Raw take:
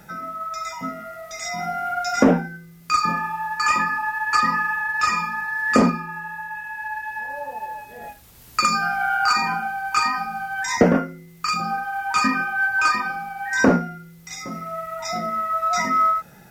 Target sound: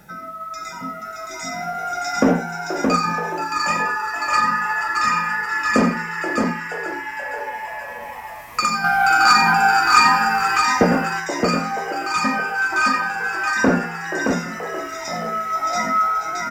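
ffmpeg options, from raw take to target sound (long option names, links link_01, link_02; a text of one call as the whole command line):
ffmpeg -i in.wav -filter_complex "[0:a]asplit=2[link_01][link_02];[link_02]asplit=8[link_03][link_04][link_05][link_06][link_07][link_08][link_09][link_10];[link_03]adelay=478,afreqshift=110,volume=-11.5dB[link_11];[link_04]adelay=956,afreqshift=220,volume=-15.2dB[link_12];[link_05]adelay=1434,afreqshift=330,volume=-19dB[link_13];[link_06]adelay=1912,afreqshift=440,volume=-22.7dB[link_14];[link_07]adelay=2390,afreqshift=550,volume=-26.5dB[link_15];[link_08]adelay=2868,afreqshift=660,volume=-30.2dB[link_16];[link_09]adelay=3346,afreqshift=770,volume=-34dB[link_17];[link_10]adelay=3824,afreqshift=880,volume=-37.7dB[link_18];[link_11][link_12][link_13][link_14][link_15][link_16][link_17][link_18]amix=inputs=8:normalize=0[link_19];[link_01][link_19]amix=inputs=2:normalize=0,asettb=1/sr,asplit=3[link_20][link_21][link_22];[link_20]atrim=end=8.844[link_23];[link_21]atrim=start=8.84:end=10.58,asetpts=PTS-STARTPTS,afade=type=in:duration=0.004:curve=qsin,afade=type=out:start_time=1.736:duration=0.004:curve=qsin,acontrast=89[link_24];[link_22]atrim=start=10.576[link_25];[link_23][link_24]acrossfade=duration=0.004:curve1=hsin:curve2=qsin[link_26];[link_26][link_25]acrossfade=duration=0.004:curve1=qsin:curve2=hsin,asplit=2[link_27][link_28];[link_28]aecho=0:1:90|620:0.251|0.631[link_29];[link_27][link_29]amix=inputs=2:normalize=0,volume=-1dB" out.wav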